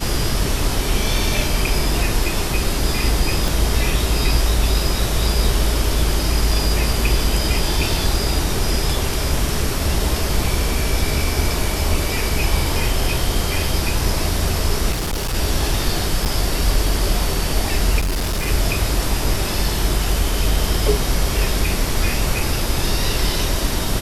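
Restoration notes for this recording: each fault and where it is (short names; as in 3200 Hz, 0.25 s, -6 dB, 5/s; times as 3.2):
3.48 pop
14.91–15.35 clipped -18.5 dBFS
16.25–16.26 gap 8.9 ms
17.99–18.48 clipped -17 dBFS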